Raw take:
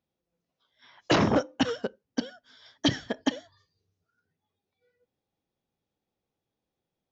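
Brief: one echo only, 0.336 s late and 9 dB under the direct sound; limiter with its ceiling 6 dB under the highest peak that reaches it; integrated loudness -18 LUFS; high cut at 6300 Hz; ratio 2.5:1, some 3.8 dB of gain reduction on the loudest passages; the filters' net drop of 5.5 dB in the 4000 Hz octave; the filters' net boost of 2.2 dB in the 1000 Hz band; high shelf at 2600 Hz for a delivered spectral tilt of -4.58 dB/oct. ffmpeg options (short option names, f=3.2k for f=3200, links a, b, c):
-af "lowpass=6.3k,equalizer=f=1k:t=o:g=3.5,highshelf=f=2.6k:g=-3.5,equalizer=f=4k:t=o:g=-4.5,acompressor=threshold=-24dB:ratio=2.5,alimiter=limit=-20dB:level=0:latency=1,aecho=1:1:336:0.355,volume=16dB"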